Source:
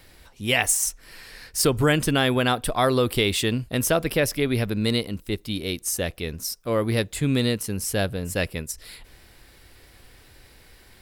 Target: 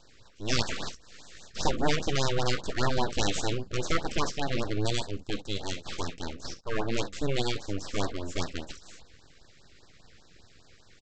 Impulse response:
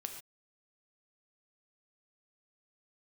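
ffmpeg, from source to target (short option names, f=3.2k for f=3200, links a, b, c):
-filter_complex "[1:a]atrim=start_sample=2205,atrim=end_sample=3087[a];[0:a][a]afir=irnorm=-1:irlink=0,aresample=16000,aeval=exprs='abs(val(0))':c=same,aresample=44100,afftfilt=real='re*(1-between(b*sr/1024,740*pow(2700/740,0.5+0.5*sin(2*PI*5*pts/sr))/1.41,740*pow(2700/740,0.5+0.5*sin(2*PI*5*pts/sr))*1.41))':imag='im*(1-between(b*sr/1024,740*pow(2700/740,0.5+0.5*sin(2*PI*5*pts/sr))/1.41,740*pow(2700/740,0.5+0.5*sin(2*PI*5*pts/sr))*1.41))':win_size=1024:overlap=0.75"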